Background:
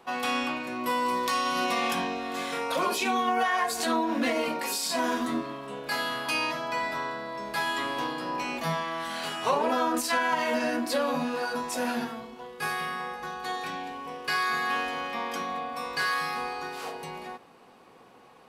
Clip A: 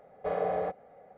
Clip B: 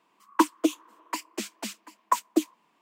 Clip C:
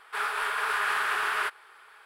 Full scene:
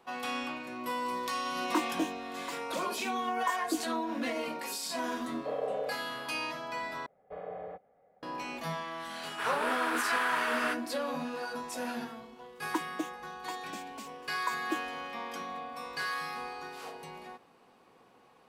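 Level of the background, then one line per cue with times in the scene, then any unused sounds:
background -7 dB
1.35 s: add B -5.5 dB + detune thickener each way 13 cents
5.21 s: add A -11.5 dB + resonant high-pass 500 Hz, resonance Q 3.4
7.06 s: replace with A -11.5 dB
9.25 s: add C -4.5 dB
12.35 s: add B -12.5 dB

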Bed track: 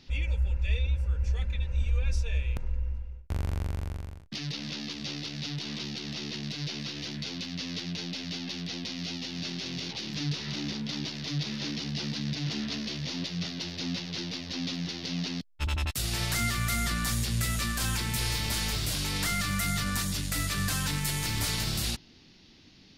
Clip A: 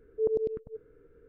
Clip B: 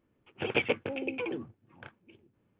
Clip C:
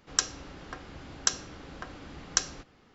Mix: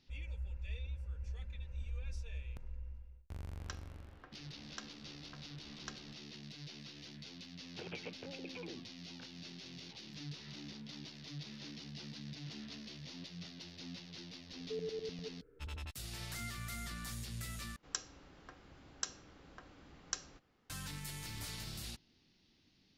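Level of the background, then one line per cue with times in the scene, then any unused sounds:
bed track -15 dB
3.51 s: add C -15.5 dB + low-pass 3.4 kHz
7.37 s: add B -11 dB + compression 2.5:1, threshold -34 dBFS
14.52 s: add A -6.5 dB + compression, threshold -32 dBFS
17.76 s: replace with C -13.5 dB

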